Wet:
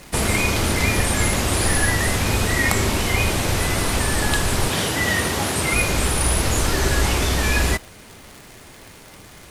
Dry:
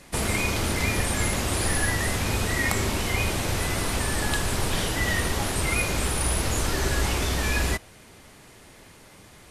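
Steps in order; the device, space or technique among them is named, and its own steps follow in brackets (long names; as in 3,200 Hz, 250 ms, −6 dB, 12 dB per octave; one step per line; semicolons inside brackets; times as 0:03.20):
vinyl LP (surface crackle 140 per second −36 dBFS; pink noise bed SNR 32 dB)
0:04.68–0:05.74: high-pass filter 95 Hz
level +5.5 dB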